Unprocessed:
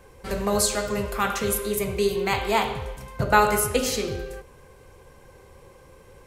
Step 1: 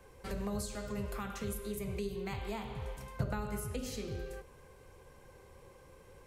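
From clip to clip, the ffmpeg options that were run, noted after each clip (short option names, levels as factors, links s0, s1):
-filter_complex "[0:a]acrossover=split=230[s0][s1];[s1]acompressor=threshold=0.02:ratio=6[s2];[s0][s2]amix=inputs=2:normalize=0,volume=0.447"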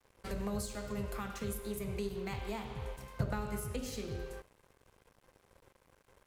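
-af "aeval=exprs='sgn(val(0))*max(abs(val(0))-0.00188,0)':c=same,volume=1.12"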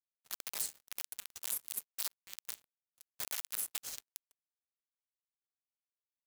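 -af "aeval=exprs='(mod(28.2*val(0)+1,2)-1)/28.2':c=same,aderivative,acrusher=bits=6:mix=0:aa=0.5,volume=1.78"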